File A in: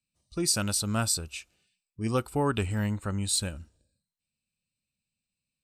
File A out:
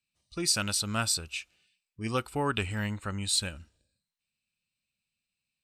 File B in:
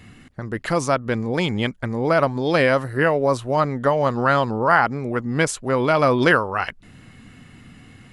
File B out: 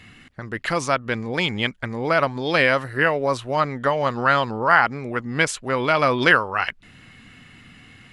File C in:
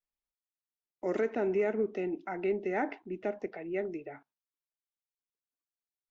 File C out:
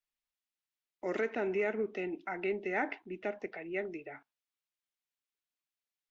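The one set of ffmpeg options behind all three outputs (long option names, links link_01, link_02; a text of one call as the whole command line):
ffmpeg -i in.wav -af "equalizer=frequency=2600:width_type=o:width=2.4:gain=9,volume=-4.5dB" out.wav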